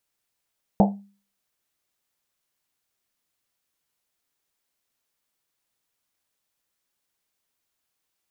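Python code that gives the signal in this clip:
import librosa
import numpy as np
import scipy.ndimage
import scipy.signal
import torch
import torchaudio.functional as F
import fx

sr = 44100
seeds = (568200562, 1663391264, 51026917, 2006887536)

y = fx.risset_drum(sr, seeds[0], length_s=1.1, hz=200.0, decay_s=0.4, noise_hz=710.0, noise_width_hz=310.0, noise_pct=35)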